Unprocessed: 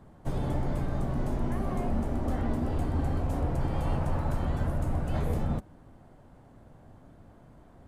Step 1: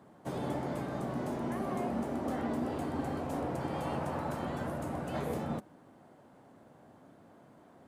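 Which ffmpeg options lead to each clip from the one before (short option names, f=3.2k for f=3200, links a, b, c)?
-af "highpass=210"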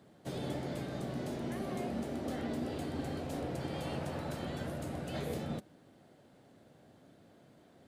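-af "equalizer=f=250:t=o:w=1:g=-3,equalizer=f=1k:t=o:w=1:g=-10,equalizer=f=4k:t=o:w=1:g=6"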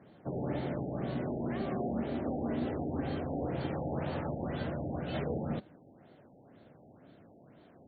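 -af "afftfilt=real='re*lt(b*sr/1024,850*pow(4600/850,0.5+0.5*sin(2*PI*2*pts/sr)))':imag='im*lt(b*sr/1024,850*pow(4600/850,0.5+0.5*sin(2*PI*2*pts/sr)))':win_size=1024:overlap=0.75,volume=3.5dB"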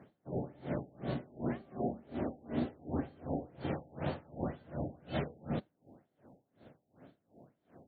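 -af "aeval=exprs='val(0)*pow(10,-27*(0.5-0.5*cos(2*PI*2.7*n/s))/20)':c=same,volume=2dB"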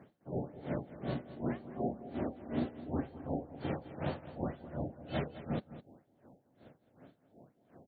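-af "aecho=1:1:210:0.2"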